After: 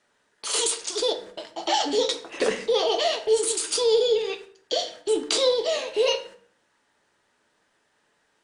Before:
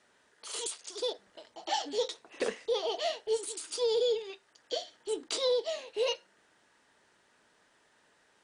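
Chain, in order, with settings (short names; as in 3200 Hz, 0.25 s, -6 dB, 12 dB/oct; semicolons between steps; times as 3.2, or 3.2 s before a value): gate -56 dBFS, range -15 dB; in parallel at -3 dB: negative-ratio compressor -37 dBFS, ratio -1; on the sum: shoebox room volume 60 m³, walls mixed, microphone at 0.32 m; gain +6 dB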